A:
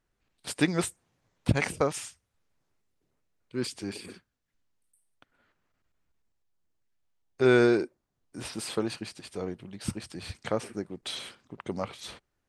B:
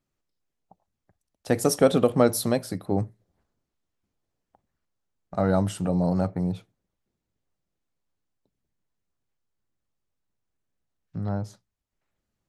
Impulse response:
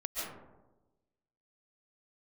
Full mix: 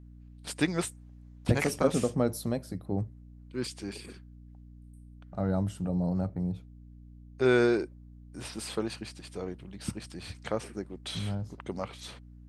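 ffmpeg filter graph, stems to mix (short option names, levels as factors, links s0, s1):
-filter_complex "[0:a]aeval=exprs='val(0)+0.00501*(sin(2*PI*60*n/s)+sin(2*PI*2*60*n/s)/2+sin(2*PI*3*60*n/s)/3+sin(2*PI*4*60*n/s)/4+sin(2*PI*5*60*n/s)/5)':c=same,volume=0.75[s0];[1:a]lowshelf=f=320:g=8.5,volume=0.266[s1];[s0][s1]amix=inputs=2:normalize=0"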